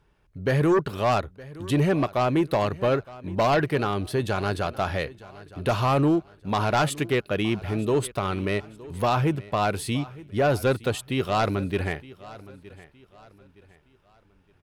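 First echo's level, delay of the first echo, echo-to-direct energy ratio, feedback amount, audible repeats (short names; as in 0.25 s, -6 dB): -19.5 dB, 0.916 s, -19.0 dB, 36%, 2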